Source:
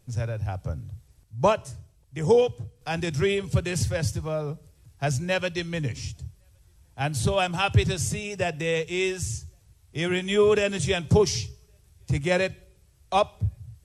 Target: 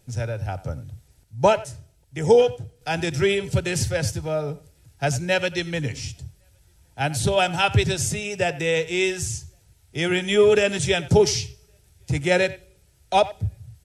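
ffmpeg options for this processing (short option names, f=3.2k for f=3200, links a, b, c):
-filter_complex "[0:a]asuperstop=centerf=1100:order=8:qfactor=5.6,lowshelf=f=180:g=-5.5,asplit=2[a][b];[b]adelay=90,highpass=300,lowpass=3.4k,asoftclip=type=hard:threshold=-17dB,volume=-17dB[c];[a][c]amix=inputs=2:normalize=0,volume=4.5dB"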